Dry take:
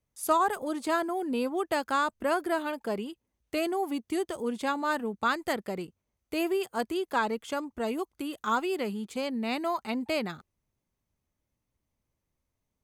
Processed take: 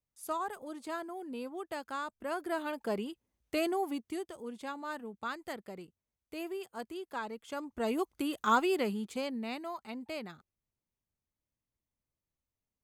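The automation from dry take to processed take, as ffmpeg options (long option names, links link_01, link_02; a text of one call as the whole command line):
ffmpeg -i in.wav -af "volume=10dB,afade=type=in:start_time=2.21:duration=0.72:silence=0.354813,afade=type=out:start_time=3.72:duration=0.57:silence=0.354813,afade=type=in:start_time=7.43:duration=0.65:silence=0.251189,afade=type=out:start_time=8.66:duration=0.98:silence=0.266073" out.wav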